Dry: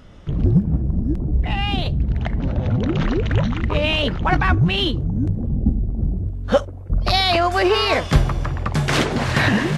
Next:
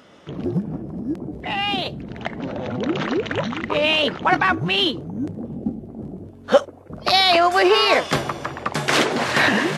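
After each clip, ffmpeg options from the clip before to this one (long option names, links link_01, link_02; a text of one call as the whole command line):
ffmpeg -i in.wav -af "highpass=290,volume=2.5dB" out.wav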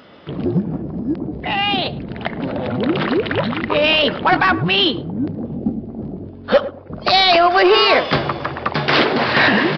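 ffmpeg -i in.wav -filter_complex "[0:a]aresample=11025,asoftclip=type=tanh:threshold=-10dB,aresample=44100,asplit=2[link_01][link_02];[link_02]adelay=108,lowpass=frequency=890:poles=1,volume=-13dB,asplit=2[link_03][link_04];[link_04]adelay=108,lowpass=frequency=890:poles=1,volume=0.23,asplit=2[link_05][link_06];[link_06]adelay=108,lowpass=frequency=890:poles=1,volume=0.23[link_07];[link_01][link_03][link_05][link_07]amix=inputs=4:normalize=0,volume=5dB" out.wav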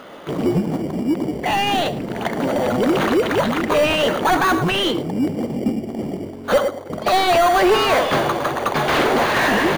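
ffmpeg -i in.wav -filter_complex "[0:a]asplit=2[link_01][link_02];[link_02]highpass=frequency=720:poles=1,volume=22dB,asoftclip=type=tanh:threshold=-2.5dB[link_03];[link_01][link_03]amix=inputs=2:normalize=0,lowpass=frequency=1500:poles=1,volume=-6dB,asplit=2[link_04][link_05];[link_05]acrusher=samples=17:mix=1:aa=0.000001,volume=-8dB[link_06];[link_04][link_06]amix=inputs=2:normalize=0,volume=-7dB" out.wav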